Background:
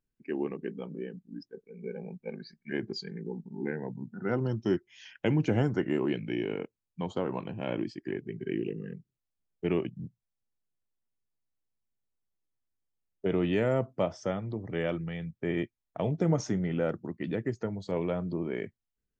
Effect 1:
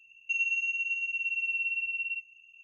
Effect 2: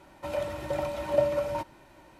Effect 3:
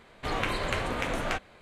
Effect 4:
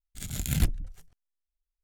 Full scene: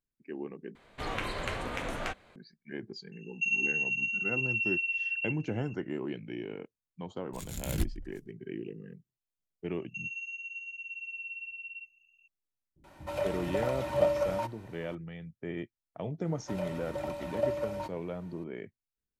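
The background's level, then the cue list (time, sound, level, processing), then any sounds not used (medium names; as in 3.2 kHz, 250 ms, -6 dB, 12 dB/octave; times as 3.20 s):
background -7 dB
0.75 s: replace with 3 -5 dB
3.12 s: add 1
7.18 s: add 4 -6.5 dB
9.65 s: add 1 -10 dB
12.76 s: add 2 -1 dB + bands offset in time lows, highs 80 ms, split 270 Hz
16.25 s: add 2 -6 dB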